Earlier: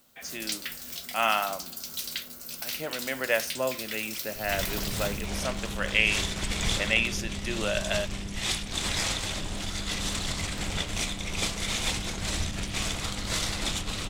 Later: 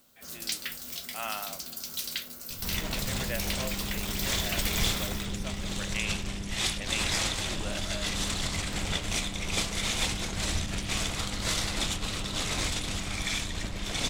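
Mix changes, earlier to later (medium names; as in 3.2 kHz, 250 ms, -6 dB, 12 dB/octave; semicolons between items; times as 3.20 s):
speech -11.0 dB; second sound: entry -1.85 s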